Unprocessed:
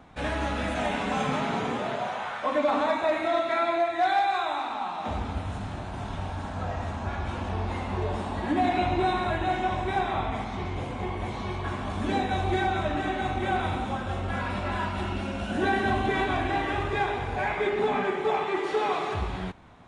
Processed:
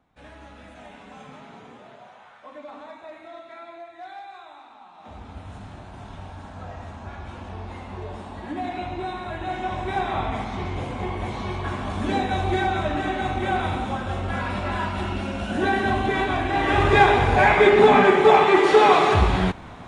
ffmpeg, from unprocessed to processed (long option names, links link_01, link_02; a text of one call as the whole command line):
ffmpeg -i in.wav -af "volume=12dB,afade=type=in:start_time=4.91:duration=0.65:silence=0.298538,afade=type=in:start_time=9.24:duration=1.01:silence=0.375837,afade=type=in:start_time=16.52:duration=0.43:silence=0.354813" out.wav